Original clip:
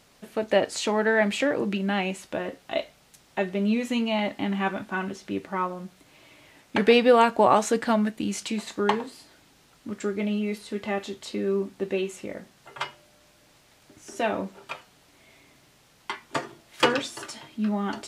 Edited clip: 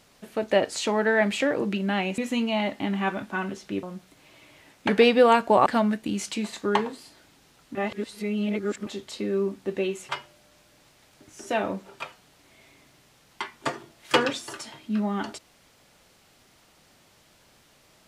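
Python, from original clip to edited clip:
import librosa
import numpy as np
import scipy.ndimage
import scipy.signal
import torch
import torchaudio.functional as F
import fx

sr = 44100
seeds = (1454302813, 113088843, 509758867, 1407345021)

y = fx.edit(x, sr, fx.cut(start_s=2.18, length_s=1.59),
    fx.cut(start_s=5.42, length_s=0.3),
    fx.cut(start_s=7.55, length_s=0.25),
    fx.reverse_span(start_s=9.89, length_s=1.12),
    fx.cut(start_s=12.23, length_s=0.55), tone=tone)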